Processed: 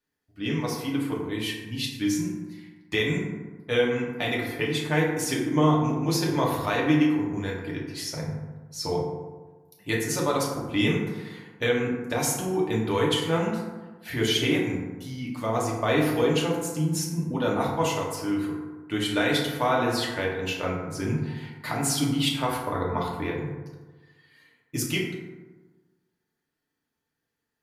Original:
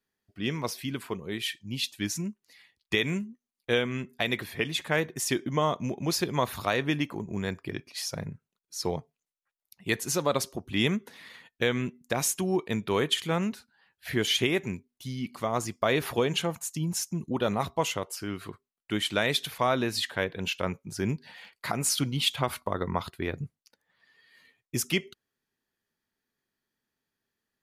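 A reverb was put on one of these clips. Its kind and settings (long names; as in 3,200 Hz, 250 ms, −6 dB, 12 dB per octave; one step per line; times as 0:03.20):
feedback delay network reverb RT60 1.3 s, low-frequency decay 1.05×, high-frequency decay 0.4×, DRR −4 dB
level −3 dB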